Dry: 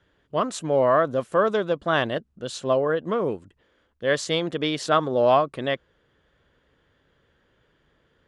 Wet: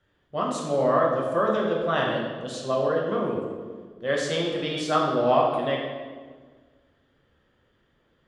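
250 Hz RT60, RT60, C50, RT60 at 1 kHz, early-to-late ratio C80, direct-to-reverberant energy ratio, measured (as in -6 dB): 2.0 s, 1.5 s, 2.0 dB, 1.4 s, 4.0 dB, -2.5 dB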